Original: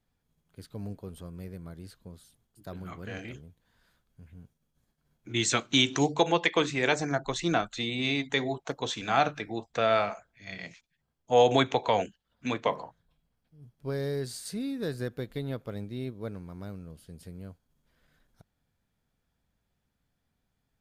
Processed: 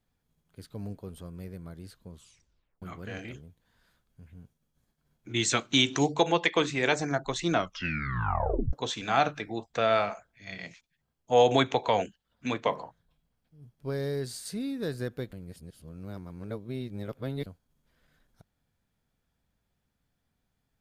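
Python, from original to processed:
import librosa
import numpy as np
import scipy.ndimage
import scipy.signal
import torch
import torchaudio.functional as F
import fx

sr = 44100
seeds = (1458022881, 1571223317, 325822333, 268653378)

y = fx.edit(x, sr, fx.tape_stop(start_s=2.11, length_s=0.71),
    fx.tape_stop(start_s=7.53, length_s=1.2),
    fx.reverse_span(start_s=15.33, length_s=2.13), tone=tone)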